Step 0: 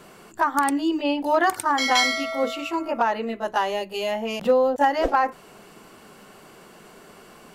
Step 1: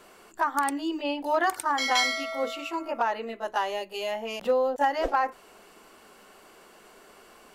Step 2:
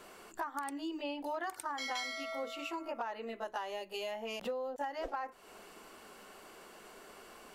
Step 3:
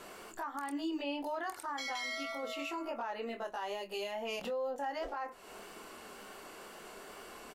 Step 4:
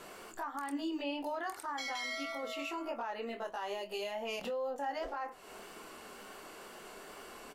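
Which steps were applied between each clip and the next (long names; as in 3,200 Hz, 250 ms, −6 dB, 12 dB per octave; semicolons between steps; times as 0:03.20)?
parametric band 140 Hz −13.5 dB 1.3 octaves; level −4 dB
downward compressor 4 to 1, threshold −37 dBFS, peak gain reduction 15 dB; level −1 dB
brickwall limiter −34.5 dBFS, peak gain reduction 8.5 dB; tape wow and flutter 24 cents; double-tracking delay 25 ms −9 dB; level +3.5 dB
flanger 1.7 Hz, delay 6 ms, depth 2.3 ms, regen +87%; level +4.5 dB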